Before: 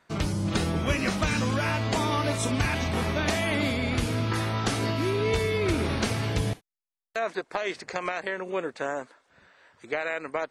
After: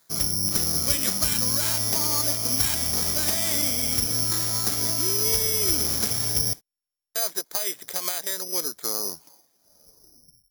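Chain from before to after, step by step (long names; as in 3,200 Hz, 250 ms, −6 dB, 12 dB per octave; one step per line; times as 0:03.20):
turntable brake at the end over 2.06 s
bad sample-rate conversion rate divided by 8×, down filtered, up zero stuff
level −6.5 dB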